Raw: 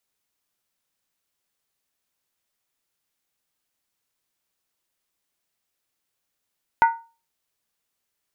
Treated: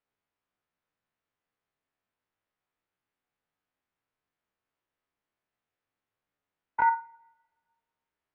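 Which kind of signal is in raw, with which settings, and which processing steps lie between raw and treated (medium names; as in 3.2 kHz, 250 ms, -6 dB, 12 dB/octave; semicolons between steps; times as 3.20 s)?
skin hit, lowest mode 920 Hz, decay 0.33 s, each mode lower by 8 dB, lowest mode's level -9.5 dB
spectrogram pixelated in time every 50 ms; low-pass 2 kHz 12 dB/octave; two-slope reverb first 0.41 s, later 1.6 s, from -22 dB, DRR 12 dB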